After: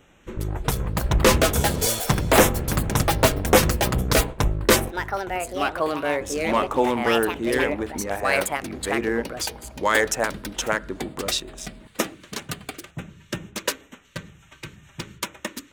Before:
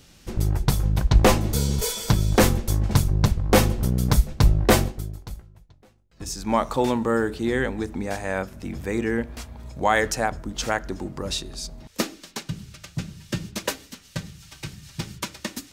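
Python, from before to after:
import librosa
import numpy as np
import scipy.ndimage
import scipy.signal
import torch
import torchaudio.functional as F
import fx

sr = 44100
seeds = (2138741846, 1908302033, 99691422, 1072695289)

y = fx.wiener(x, sr, points=9)
y = fx.low_shelf(y, sr, hz=150.0, db=3.5)
y = fx.filter_lfo_notch(y, sr, shape='square', hz=2.1, low_hz=740.0, high_hz=4500.0, q=2.2)
y = fx.bass_treble(y, sr, bass_db=-12, treble_db=2)
y = fx.echo_pitch(y, sr, ms=428, semitones=4, count=2, db_per_echo=-3.0)
y = y * 10.0 ** (3.0 / 20.0)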